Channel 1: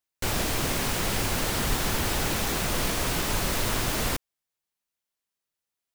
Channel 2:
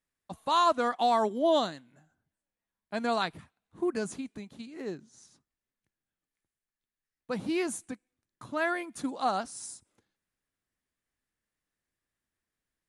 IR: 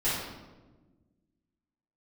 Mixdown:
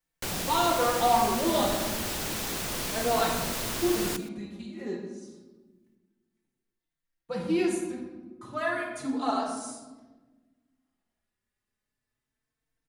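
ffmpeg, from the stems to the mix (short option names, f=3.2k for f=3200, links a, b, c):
-filter_complex "[0:a]lowshelf=f=130:g=-10,acrossover=split=410|3000[a][b][c];[b]acompressor=threshold=-34dB:ratio=6[d];[a][d][c]amix=inputs=3:normalize=0,volume=-3dB,asplit=2[e][f];[f]volume=-18.5dB[g];[1:a]asplit=2[h][i];[i]adelay=4,afreqshift=0.31[j];[h][j]amix=inputs=2:normalize=1,volume=-2.5dB,asplit=2[k][l];[l]volume=-5dB[m];[2:a]atrim=start_sample=2205[n];[m][n]afir=irnorm=-1:irlink=0[o];[g]aecho=0:1:121:1[p];[e][k][o][p]amix=inputs=4:normalize=0"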